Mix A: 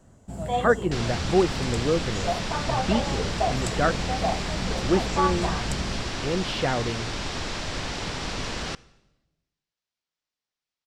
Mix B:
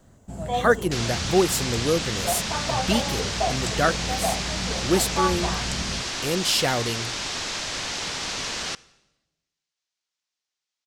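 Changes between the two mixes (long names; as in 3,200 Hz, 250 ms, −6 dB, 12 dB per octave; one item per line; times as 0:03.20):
speech: remove high-frequency loss of the air 390 metres
second sound: add spectral tilt +2.5 dB per octave
master: remove notch filter 6,400 Hz, Q 22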